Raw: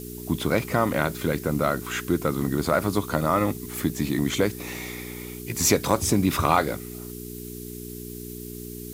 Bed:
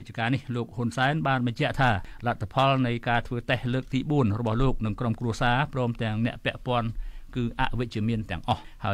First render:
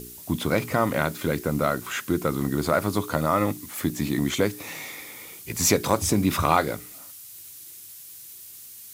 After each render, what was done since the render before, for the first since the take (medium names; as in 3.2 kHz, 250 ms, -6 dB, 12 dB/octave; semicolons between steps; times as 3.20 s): de-hum 60 Hz, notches 7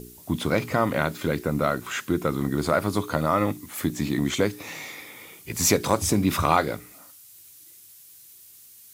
noise print and reduce 6 dB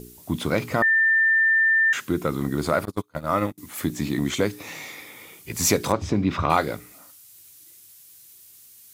0.82–1.93 s: bleep 1.79 kHz -15.5 dBFS; 2.85–3.58 s: gate -24 dBFS, range -32 dB; 5.92–6.50 s: distance through air 190 m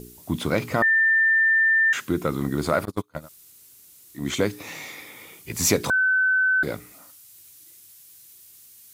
3.21–4.22 s: room tone, crossfade 0.16 s; 5.90–6.63 s: bleep 1.52 kHz -17 dBFS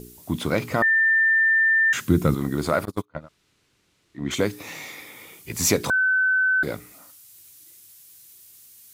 1.05–2.35 s: tone controls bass +12 dB, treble +4 dB; 3.05–4.31 s: low-pass 2.8 kHz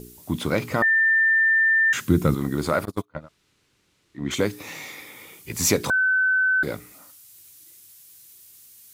band-stop 680 Hz, Q 19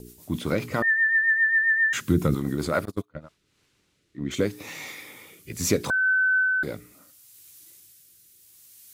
rotary cabinet horn 7.5 Hz, later 0.75 Hz, at 2.77 s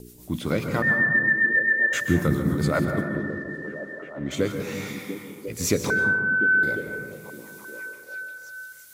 repeats whose band climbs or falls 349 ms, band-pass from 170 Hz, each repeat 0.7 oct, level -3 dB; plate-style reverb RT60 1.6 s, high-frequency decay 0.3×, pre-delay 115 ms, DRR 5.5 dB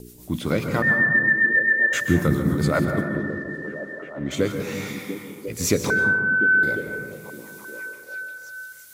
trim +2 dB